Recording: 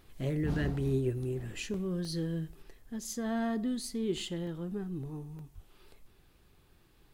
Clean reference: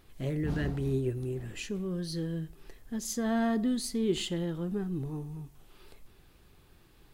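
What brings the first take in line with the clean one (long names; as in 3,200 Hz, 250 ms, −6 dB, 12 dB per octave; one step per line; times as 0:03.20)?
0:05.54–0:05.66: high-pass filter 140 Hz 24 dB per octave
repair the gap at 0:01.74/0:02.05/0:04.47/0:05.39, 2.1 ms
level 0 dB, from 0:02.62 +4 dB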